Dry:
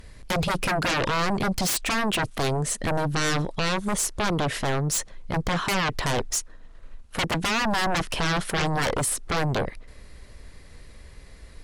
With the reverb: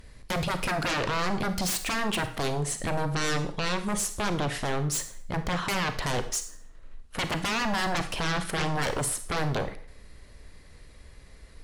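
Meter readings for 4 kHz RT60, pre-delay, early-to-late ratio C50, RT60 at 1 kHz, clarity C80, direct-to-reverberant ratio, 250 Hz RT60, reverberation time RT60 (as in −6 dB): 0.50 s, 31 ms, 11.5 dB, 0.45 s, 15.5 dB, 9.0 dB, 0.45 s, 0.45 s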